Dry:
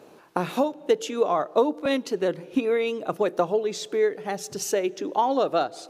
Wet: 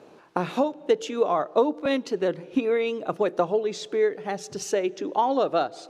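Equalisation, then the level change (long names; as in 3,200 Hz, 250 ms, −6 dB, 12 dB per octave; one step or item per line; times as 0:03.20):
high-frequency loss of the air 53 metres
0.0 dB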